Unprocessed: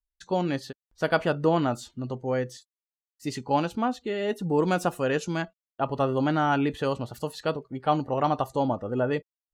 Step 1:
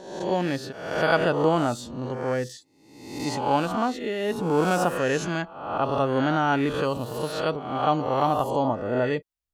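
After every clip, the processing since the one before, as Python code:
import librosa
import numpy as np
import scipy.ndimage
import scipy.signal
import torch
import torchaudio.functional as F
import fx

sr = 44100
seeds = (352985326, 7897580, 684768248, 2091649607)

y = fx.spec_swells(x, sr, rise_s=0.87)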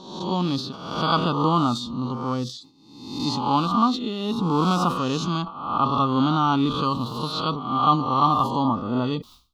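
y = fx.curve_eq(x, sr, hz=(100.0, 240.0, 390.0, 610.0, 1200.0, 1700.0, 3700.0, 8200.0), db=(0, 6, -5, -11, 10, -23, 10, -9))
y = fx.sustainer(y, sr, db_per_s=140.0)
y = y * librosa.db_to_amplitude(1.5)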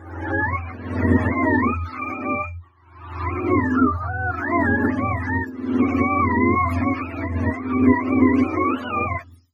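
y = fx.octave_mirror(x, sr, pivot_hz=550.0)
y = y * librosa.db_to_amplitude(3.0)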